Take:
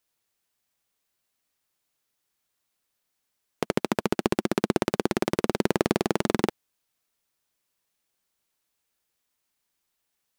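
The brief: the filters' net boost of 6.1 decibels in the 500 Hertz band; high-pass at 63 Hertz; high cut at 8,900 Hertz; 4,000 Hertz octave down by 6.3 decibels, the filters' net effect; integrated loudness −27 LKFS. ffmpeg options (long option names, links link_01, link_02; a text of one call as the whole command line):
ffmpeg -i in.wav -af "highpass=63,lowpass=8900,equalizer=frequency=500:width_type=o:gain=8,equalizer=frequency=4000:width_type=o:gain=-8.5,volume=-3.5dB" out.wav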